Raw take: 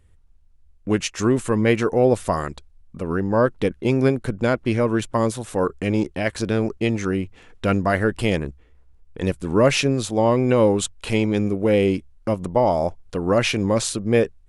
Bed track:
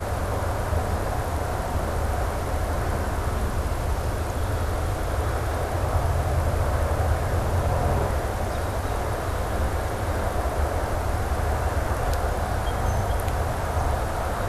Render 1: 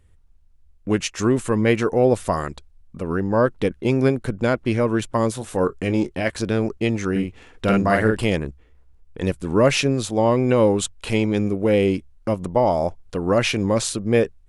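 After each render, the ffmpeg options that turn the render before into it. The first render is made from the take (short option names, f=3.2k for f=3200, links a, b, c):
-filter_complex "[0:a]asettb=1/sr,asplit=3[a][b][c];[a]atrim=end=5.334[d];[b]atrim=start=5.33:end=6.3,asetpts=PTS-STARTPTS,afade=t=in:d=0.004:c=qsin,afade=t=out:st=0.966:d=0.004:c=qsin,asplit=2[e][f];[f]adelay=22,volume=-12dB[g];[e][g]amix=inputs=2:normalize=0,atrim=end_sample=42777[h];[c]atrim=start=6.296[i];[d][h]acrossfade=d=0.004:c1=hsin:c2=qsin[j];[j][i]acrossfade=d=0.004:c1=qsin:c2=hsin,asettb=1/sr,asplit=3[k][l][m];[k]atrim=end=7.114[n];[l]atrim=start=7.11:end=8.24,asetpts=PTS-STARTPTS,afade=t=in:d=0.004:c=qsin,afade=t=out:st=1.126:d=0.004:c=qsin,asplit=2[o][p];[p]adelay=46,volume=-2.5dB[q];[o][q]amix=inputs=2:normalize=0,atrim=end_sample=49833[r];[m]atrim=start=8.236[s];[n][r]acrossfade=d=0.004:c1=hsin:c2=qsin[t];[t][s]acrossfade=d=0.004:c1=qsin:c2=hsin"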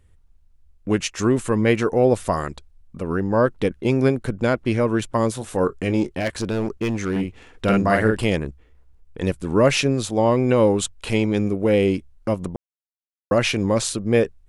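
-filter_complex "[0:a]asplit=3[a][b][c];[a]afade=t=out:st=6.06:d=0.02[d];[b]asoftclip=type=hard:threshold=-18dB,afade=t=in:st=6.06:d=0.02,afade=t=out:st=7.2:d=0.02[e];[c]afade=t=in:st=7.2:d=0.02[f];[d][e][f]amix=inputs=3:normalize=0,asplit=3[g][h][i];[g]atrim=end=12.56,asetpts=PTS-STARTPTS,afade=t=out:st=12.556:d=0.004:c=hsin[j];[h]atrim=start=12.56:end=13.31,asetpts=PTS-STARTPTS,volume=0[k];[i]atrim=start=13.31,asetpts=PTS-STARTPTS,afade=t=in:d=0.004:c=hsin[l];[j][k][l]concat=n=3:v=0:a=1"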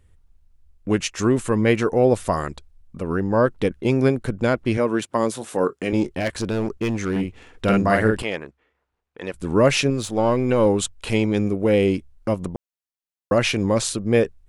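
-filter_complex "[0:a]asettb=1/sr,asplit=3[a][b][c];[a]atrim=end=4.774[d];[b]atrim=start=4.77:end=5.93,asetpts=PTS-STARTPTS,afade=t=in:d=0.004:c=qsin,afade=t=out:st=1.156:d=0.004:c=qsin,highpass=190[e];[c]atrim=start=5.926[f];[d][e]acrossfade=d=0.004:c1=hsin:c2=qsin[g];[g][f]acrossfade=d=0.004:c1=qsin:c2=hsin,asettb=1/sr,asplit=3[h][i][j];[h]atrim=end=8.224[k];[i]atrim=start=8.22:end=9.34,asetpts=PTS-STARTPTS,afade=t=in:d=0.004:c=qsin,afade=t=out:st=1.116:d=0.004:c=qsin,bandpass=f=1.4k:t=q:w=0.57[l];[j]atrim=start=9.336[m];[k][l]acrossfade=d=0.004:c1=hsin:c2=qsin[n];[n][m]acrossfade=d=0.004:c1=qsin:c2=hsin,asettb=1/sr,asplit=3[o][p][q];[o]atrim=end=9.904[r];[p]atrim=start=9.9:end=10.66,asetpts=PTS-STARTPTS,afade=t=in:d=0.004:c=qsin,afade=t=out:st=0.756:d=0.004:c=qsin,aeval=exprs='if(lt(val(0),0),0.708*val(0),val(0))':c=same[s];[q]atrim=start=10.656[t];[r][s]acrossfade=d=0.004:c1=hsin:c2=qsin[u];[u][t]acrossfade=d=0.004:c1=qsin:c2=hsin"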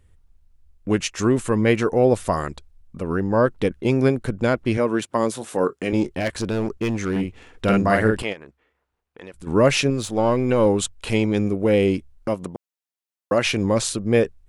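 -filter_complex "[0:a]asplit=3[a][b][c];[a]afade=t=out:st=8.32:d=0.02[d];[b]acompressor=threshold=-39dB:ratio=2.5:attack=3.2:release=140:knee=1:detection=peak,afade=t=in:st=8.32:d=0.02,afade=t=out:st=9.46:d=0.02[e];[c]afade=t=in:st=9.46:d=0.02[f];[d][e][f]amix=inputs=3:normalize=0,asettb=1/sr,asplit=3[g][h][i];[g]atrim=end=12.284[j];[h]atrim=start=12.28:end=13.45,asetpts=PTS-STARTPTS,afade=t=in:d=0.004:c=qsin,afade=t=out:st=1.166:d=0.004:c=qsin,highpass=f=220:p=1[k];[i]atrim=start=13.446[l];[j][k]acrossfade=d=0.004:c1=hsin:c2=qsin[m];[m][l]acrossfade=d=0.004:c1=qsin:c2=hsin"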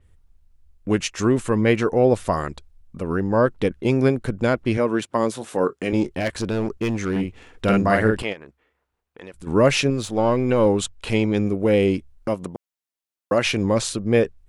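-af "adynamicequalizer=threshold=0.00708:dfrequency=6300:dqfactor=0.7:tfrequency=6300:tqfactor=0.7:attack=5:release=100:ratio=0.375:range=2.5:mode=cutabove:tftype=highshelf"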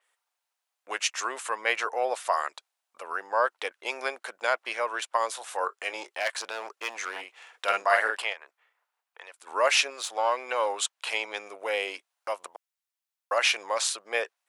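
-af "highpass=f=710:w=0.5412,highpass=f=710:w=1.3066"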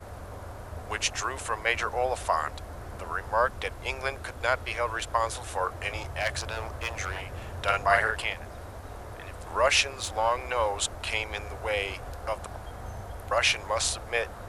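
-filter_complex "[1:a]volume=-15dB[a];[0:a][a]amix=inputs=2:normalize=0"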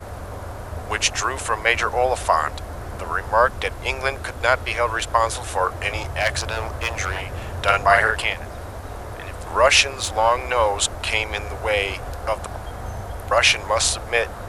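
-af "volume=8dB,alimiter=limit=-2dB:level=0:latency=1"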